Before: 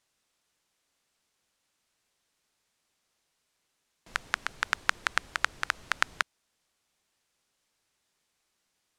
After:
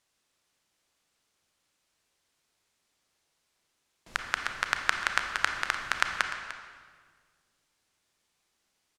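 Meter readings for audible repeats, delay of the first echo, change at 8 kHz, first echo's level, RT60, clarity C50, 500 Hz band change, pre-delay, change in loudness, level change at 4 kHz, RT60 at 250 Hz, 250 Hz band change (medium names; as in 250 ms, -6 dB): 1, 299 ms, +1.0 dB, -14.0 dB, 1.7 s, 5.0 dB, +1.5 dB, 27 ms, +1.0 dB, +1.5 dB, 2.0 s, +2.0 dB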